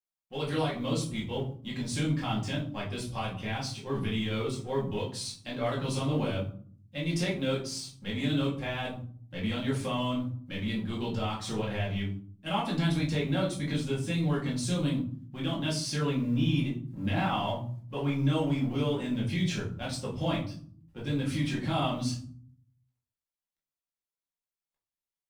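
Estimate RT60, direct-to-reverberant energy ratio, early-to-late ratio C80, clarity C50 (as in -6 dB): 0.50 s, -6.0 dB, 12.5 dB, 8.0 dB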